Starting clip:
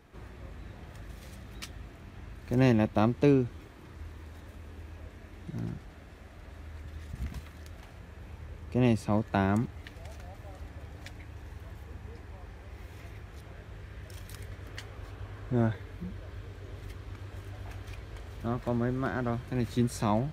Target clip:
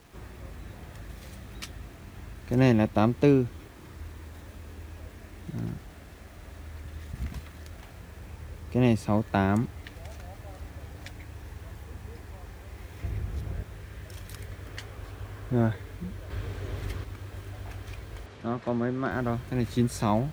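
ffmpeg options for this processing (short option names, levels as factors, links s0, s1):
-filter_complex "[0:a]asettb=1/sr,asplit=3[s0][s1][s2];[s0]atrim=end=13.024[s3];[s1]atrim=start=13.02:end=13.63,asetpts=PTS-STARTPTS,afade=t=in:d=0.004:c=qsin,afade=t=out:st=0.606:d=0.004:c=qsin,lowshelf=f=330:g=11.5[s4];[s2]atrim=start=13.626[s5];[s3][s4]acrossfade=d=0.004:c1=hsin:c2=qsin[s6];[s6][s5]acrossfade=d=0.004:c1=qsin:c2=hsin,asettb=1/sr,asplit=3[s7][s8][s9];[s7]atrim=end=16.304[s10];[s8]atrim=start=16.3:end=17.04,asetpts=PTS-STARTPTS,afade=t=in:d=0.004:c=qsin,afade=t=out:st=0.736:d=0.004:c=qsin,acontrast=56[s11];[s9]atrim=start=17.036[s12];[s10][s11]acrossfade=d=0.004:c1=hsin:c2=qsin[s13];[s13][s12]acrossfade=d=0.004:c1=qsin:c2=hsin,acrusher=bits=9:mix=0:aa=0.000001,asettb=1/sr,asplit=3[s14][s15][s16];[s14]atrim=end=18.264[s17];[s15]atrim=start=18.26:end=19.11,asetpts=PTS-STARTPTS,afade=t=in:d=0.004:c=qsin,afade=t=out:st=0.846:d=0.004:c=qsin,highpass=140,lowpass=5900[s18];[s16]atrim=start=19.106[s19];[s17][s18]acrossfade=d=0.004:c1=hsin:c2=qsin[s20];[s20][s19]acrossfade=d=0.004:c1=qsin:c2=hsin,volume=1.33"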